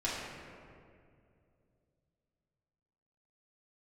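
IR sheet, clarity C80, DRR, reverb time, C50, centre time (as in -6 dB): 1.0 dB, -8.5 dB, 2.4 s, -1.0 dB, 0.117 s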